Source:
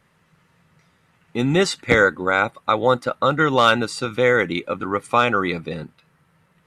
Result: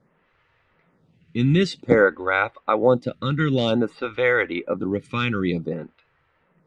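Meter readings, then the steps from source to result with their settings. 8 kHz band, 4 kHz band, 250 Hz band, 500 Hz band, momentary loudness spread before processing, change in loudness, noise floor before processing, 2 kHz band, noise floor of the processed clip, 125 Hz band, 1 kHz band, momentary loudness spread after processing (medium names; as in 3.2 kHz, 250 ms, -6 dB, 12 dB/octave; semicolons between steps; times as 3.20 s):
under -10 dB, -5.5 dB, +1.0 dB, -1.5 dB, 9 LU, -2.5 dB, -62 dBFS, -4.0 dB, -66 dBFS, +2.5 dB, -7.0 dB, 8 LU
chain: low-pass 3 kHz 12 dB/octave; peaking EQ 1.1 kHz -7.5 dB 2 oct; lamp-driven phase shifter 0.53 Hz; trim +5 dB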